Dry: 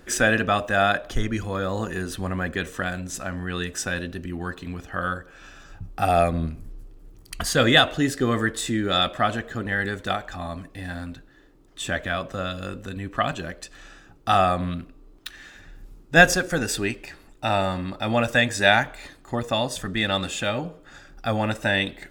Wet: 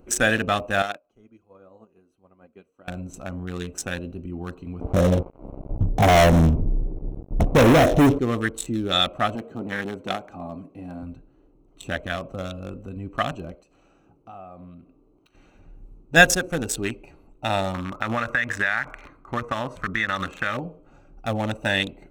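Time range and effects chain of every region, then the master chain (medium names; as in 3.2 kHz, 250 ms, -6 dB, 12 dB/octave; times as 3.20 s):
0.82–2.88 s: high-pass 340 Hz 6 dB/octave + flange 1.4 Hz, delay 1.8 ms, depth 3.4 ms, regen +74% + upward expansion 2.5:1, over -38 dBFS
4.81–8.19 s: steep low-pass 680 Hz + waveshaping leveller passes 5
9.35–11.03 s: high-pass 200 Hz + bass shelf 340 Hz +6.5 dB + transformer saturation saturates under 1 kHz
13.55–15.35 s: high-pass 150 Hz 6 dB/octave + compression 2:1, threshold -48 dBFS
17.74–20.57 s: low-pass 3.5 kHz 6 dB/octave + high-order bell 1.5 kHz +13.5 dB 1.3 oct + compression, threshold -19 dBFS
whole clip: local Wiener filter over 25 samples; treble shelf 3.5 kHz +9.5 dB; band-stop 4.7 kHz, Q 5.6; trim -1 dB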